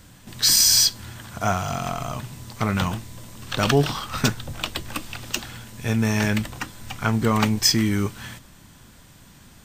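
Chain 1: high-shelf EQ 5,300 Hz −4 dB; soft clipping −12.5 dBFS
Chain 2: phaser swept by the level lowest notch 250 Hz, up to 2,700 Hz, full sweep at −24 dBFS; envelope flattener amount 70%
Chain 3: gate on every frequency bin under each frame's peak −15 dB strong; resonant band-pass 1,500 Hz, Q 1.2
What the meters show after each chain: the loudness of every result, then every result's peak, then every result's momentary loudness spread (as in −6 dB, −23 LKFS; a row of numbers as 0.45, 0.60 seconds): −24.5, −19.5, −33.5 LKFS; −12.5, −1.5, −11.0 dBFS; 18, 9, 15 LU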